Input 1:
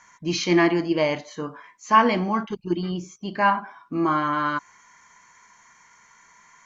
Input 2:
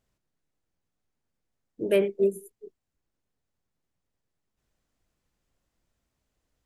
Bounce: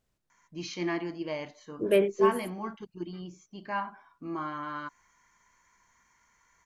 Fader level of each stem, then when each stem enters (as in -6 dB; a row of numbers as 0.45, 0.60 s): -13.0, -0.5 dB; 0.30, 0.00 s